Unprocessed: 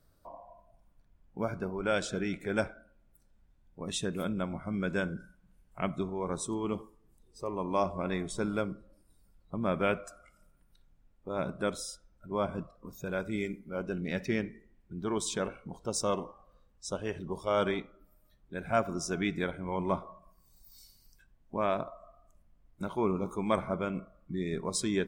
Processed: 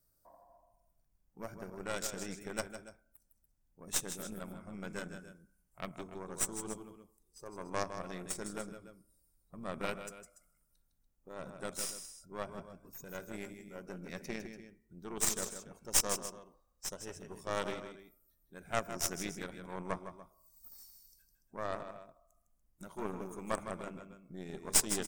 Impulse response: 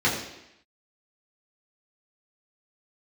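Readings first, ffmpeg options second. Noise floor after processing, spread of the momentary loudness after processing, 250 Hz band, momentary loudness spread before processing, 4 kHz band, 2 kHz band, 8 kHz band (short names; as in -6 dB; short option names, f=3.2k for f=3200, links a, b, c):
-75 dBFS, 20 LU, -11.0 dB, 12 LU, -1.0 dB, -6.0 dB, +5.5 dB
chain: -af "aexciter=amount=5.2:drive=2.9:freq=5k,aecho=1:1:157.4|288.6:0.447|0.251,aeval=exprs='0.422*(cos(1*acos(clip(val(0)/0.422,-1,1)))-cos(1*PI/2))+0.0944*(cos(4*acos(clip(val(0)/0.422,-1,1)))-cos(4*PI/2))+0.0376*(cos(7*acos(clip(val(0)/0.422,-1,1)))-cos(7*PI/2))':c=same,volume=-4.5dB"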